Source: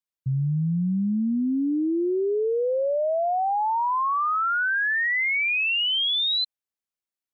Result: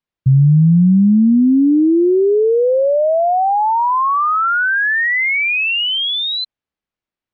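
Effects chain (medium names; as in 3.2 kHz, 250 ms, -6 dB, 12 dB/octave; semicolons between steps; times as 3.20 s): low-pass 3.3 kHz; bass shelf 340 Hz +7.5 dB; trim +8 dB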